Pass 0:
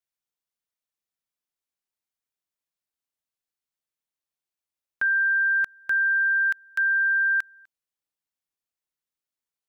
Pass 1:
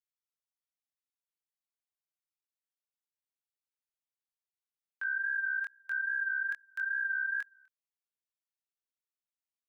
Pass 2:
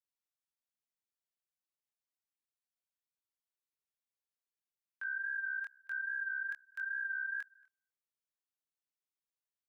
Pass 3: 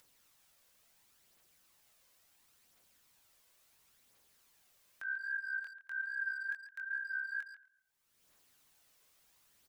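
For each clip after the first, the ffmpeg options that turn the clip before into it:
ffmpeg -i in.wav -af "flanger=delay=20:depth=5.8:speed=2.4,highpass=800,volume=-7.5dB" out.wav
ffmpeg -i in.wav -filter_complex "[0:a]asplit=2[link_01][link_02];[link_02]adelay=227.4,volume=-27dB,highshelf=frequency=4000:gain=-5.12[link_03];[link_01][link_03]amix=inputs=2:normalize=0,volume=-5dB" out.wav
ffmpeg -i in.wav -filter_complex "[0:a]aphaser=in_gain=1:out_gain=1:delay=2:decay=0.36:speed=0.72:type=triangular,acompressor=mode=upward:threshold=-46dB:ratio=2.5,asplit=2[link_01][link_02];[link_02]adelay=140,highpass=300,lowpass=3400,asoftclip=type=hard:threshold=-36dB,volume=-11dB[link_03];[link_01][link_03]amix=inputs=2:normalize=0,volume=-2dB" out.wav

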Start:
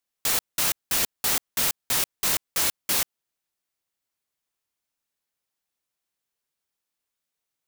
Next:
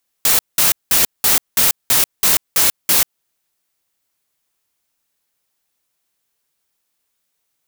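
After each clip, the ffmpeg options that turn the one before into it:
ffmpeg -i in.wav -filter_complex "[0:a]highshelf=frequency=8200:gain=4,asplit=2[link_01][link_02];[link_02]alimiter=limit=-17dB:level=0:latency=1:release=211,volume=-1.5dB[link_03];[link_01][link_03]amix=inputs=2:normalize=0,volume=4.5dB" out.wav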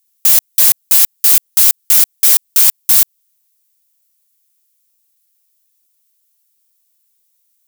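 ffmpeg -i in.wav -af "aeval=exprs='(mod(2.51*val(0)+1,2)-1)/2.51':channel_layout=same,aderivative,acontrast=82,volume=-1dB" out.wav

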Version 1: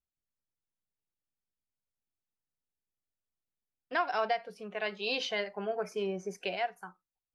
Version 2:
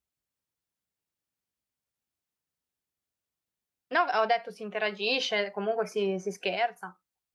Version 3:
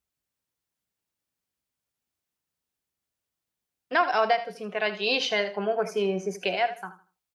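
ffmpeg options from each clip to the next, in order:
ffmpeg -i in.wav -af "highpass=52,volume=5dB" out.wav
ffmpeg -i in.wav -af "aecho=1:1:79|158|237:0.211|0.055|0.0143,volume=2.5dB" out.wav

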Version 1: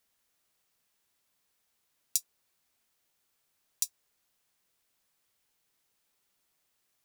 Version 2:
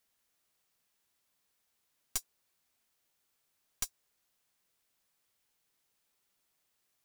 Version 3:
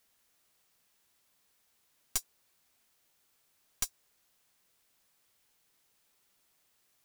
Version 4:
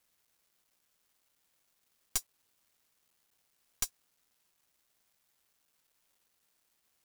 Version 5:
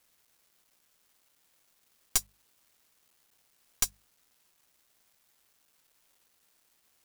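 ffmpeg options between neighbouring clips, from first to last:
ffmpeg -i in.wav -af "aeval=exprs='(tanh(20*val(0)+0.7)-tanh(0.7))/20':channel_layout=same,volume=2dB" out.wav
ffmpeg -i in.wav -af "alimiter=limit=-23.5dB:level=0:latency=1:release=94,volume=6dB" out.wav
ffmpeg -i in.wav -af "acrusher=bits=10:mix=0:aa=0.000001" out.wav
ffmpeg -i in.wav -af "bandreject=frequency=50:width_type=h:width=6,bandreject=frequency=100:width_type=h:width=6,bandreject=frequency=150:width_type=h:width=6,bandreject=frequency=200:width_type=h:width=6,volume=6dB" out.wav

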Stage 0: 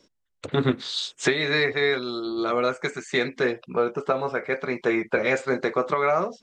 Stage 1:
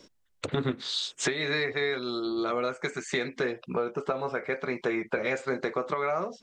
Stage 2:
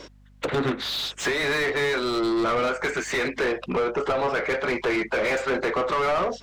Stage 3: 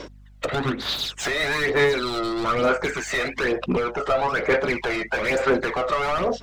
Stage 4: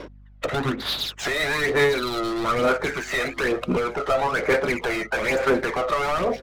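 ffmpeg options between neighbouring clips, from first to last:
ffmpeg -i in.wav -af "acompressor=threshold=-38dB:ratio=2.5,volume=6dB" out.wav
ffmpeg -i in.wav -filter_complex "[0:a]asplit=2[link_01][link_02];[link_02]highpass=frequency=720:poles=1,volume=28dB,asoftclip=type=tanh:threshold=-12.5dB[link_03];[link_01][link_03]amix=inputs=2:normalize=0,lowpass=frequency=1900:poles=1,volume=-6dB,aeval=exprs='val(0)+0.00355*(sin(2*PI*50*n/s)+sin(2*PI*2*50*n/s)/2+sin(2*PI*3*50*n/s)/3+sin(2*PI*4*50*n/s)/4+sin(2*PI*5*50*n/s)/5)':channel_layout=same,volume=-2.5dB" out.wav
ffmpeg -i in.wav -af "aphaser=in_gain=1:out_gain=1:delay=1.6:decay=0.54:speed=1.1:type=sinusoidal" out.wav
ffmpeg -i in.wav -af "adynamicsmooth=sensitivity=8:basefreq=2300,aecho=1:1:1051:0.1" out.wav

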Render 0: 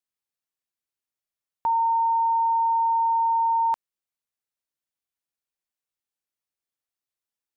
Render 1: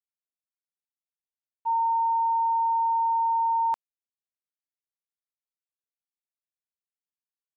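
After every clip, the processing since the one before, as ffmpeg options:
ffmpeg -i in.wav -af "agate=range=-33dB:threshold=-16dB:ratio=3:detection=peak,volume=5dB" out.wav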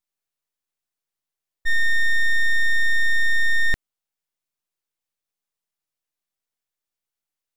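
ffmpeg -i in.wav -af "aeval=exprs='abs(val(0))':channel_layout=same,volume=8.5dB" out.wav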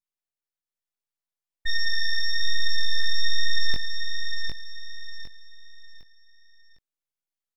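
ffmpeg -i in.wav -filter_complex "[0:a]aeval=exprs='0.251*(cos(1*acos(clip(val(0)/0.251,-1,1)))-cos(1*PI/2))+0.0794*(cos(6*acos(clip(val(0)/0.251,-1,1)))-cos(6*PI/2))+0.00447*(cos(7*acos(clip(val(0)/0.251,-1,1)))-cos(7*PI/2))':channel_layout=same,flanger=delay=19.5:depth=4.4:speed=1.1,asplit=2[link_01][link_02];[link_02]aecho=0:1:756|1512|2268|3024:0.562|0.191|0.065|0.0221[link_03];[link_01][link_03]amix=inputs=2:normalize=0,volume=-4.5dB" out.wav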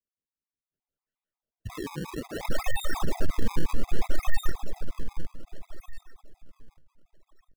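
ffmpeg -i in.wav -filter_complex "[0:a]acrossover=split=1000|4700[link_01][link_02][link_03];[link_03]adelay=720[link_04];[link_01]adelay=750[link_05];[link_05][link_02][link_04]amix=inputs=3:normalize=0,acrusher=samples=37:mix=1:aa=0.000001:lfo=1:lforange=59.2:lforate=0.63,afftfilt=real='re*gt(sin(2*PI*5.6*pts/sr)*(1-2*mod(floor(b*sr/1024/660),2)),0)':imag='im*gt(sin(2*PI*5.6*pts/sr)*(1-2*mod(floor(b*sr/1024/660),2)),0)':win_size=1024:overlap=0.75" out.wav

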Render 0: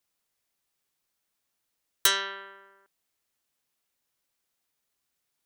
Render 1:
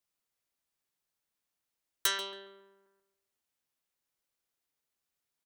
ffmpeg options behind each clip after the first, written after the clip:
ffmpeg -i in.wav -filter_complex "[0:a]asplit=2[link_01][link_02];[link_02]adelay=138,lowpass=frequency=1500:poles=1,volume=-4.5dB,asplit=2[link_03][link_04];[link_04]adelay=138,lowpass=frequency=1500:poles=1,volume=0.38,asplit=2[link_05][link_06];[link_06]adelay=138,lowpass=frequency=1500:poles=1,volume=0.38,asplit=2[link_07][link_08];[link_08]adelay=138,lowpass=frequency=1500:poles=1,volume=0.38,asplit=2[link_09][link_10];[link_10]adelay=138,lowpass=frequency=1500:poles=1,volume=0.38[link_11];[link_01][link_03][link_05][link_07][link_09][link_11]amix=inputs=6:normalize=0,volume=-7dB" out.wav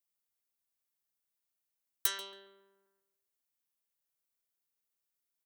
ffmpeg -i in.wav -af "highshelf=frequency=8900:gain=11,volume=-7.5dB" out.wav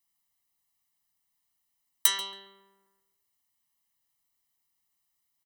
ffmpeg -i in.wav -af "aecho=1:1:1:0.97,volume=5dB" out.wav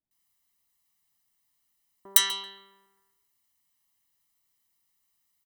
ffmpeg -i in.wav -filter_complex "[0:a]acrossover=split=650[link_01][link_02];[link_02]adelay=110[link_03];[link_01][link_03]amix=inputs=2:normalize=0,volume=3.5dB" out.wav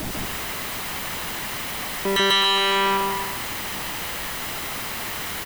ffmpeg -i in.wav -filter_complex "[0:a]aeval=exprs='val(0)+0.5*0.0708*sgn(val(0))':channel_layout=same,aecho=1:1:142.9|259.5:0.891|0.282,acrossover=split=3300[link_01][link_02];[link_02]acompressor=threshold=-39dB:ratio=4:attack=1:release=60[link_03];[link_01][link_03]amix=inputs=2:normalize=0,volume=6dB" out.wav

